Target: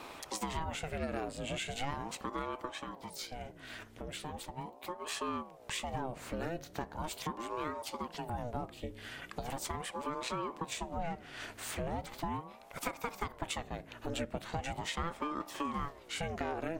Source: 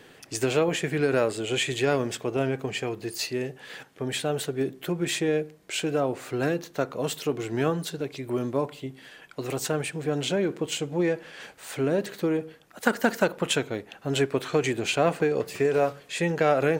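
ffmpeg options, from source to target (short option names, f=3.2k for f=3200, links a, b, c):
-filter_complex "[0:a]acompressor=threshold=-43dB:ratio=3,asplit=3[a][b][c];[a]afade=t=out:st=2.67:d=0.02[d];[b]flanger=delay=3:depth=6.3:regen=57:speed=2:shape=triangular,afade=t=in:st=2.67:d=0.02,afade=t=out:st=5.05:d=0.02[e];[c]afade=t=in:st=5.05:d=0.02[f];[d][e][f]amix=inputs=3:normalize=0,aeval=exprs='val(0)+0.00112*(sin(2*PI*60*n/s)+sin(2*PI*2*60*n/s)/2+sin(2*PI*3*60*n/s)/3+sin(2*PI*4*60*n/s)/4+sin(2*PI*5*60*n/s)/5)':c=same,aeval=exprs='val(0)*sin(2*PI*460*n/s+460*0.65/0.39*sin(2*PI*0.39*n/s))':c=same,volume=5.5dB"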